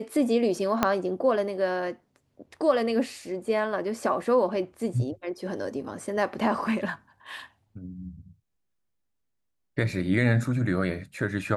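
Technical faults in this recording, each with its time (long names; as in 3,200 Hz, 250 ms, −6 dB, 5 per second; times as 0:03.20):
0:00.83: click −7 dBFS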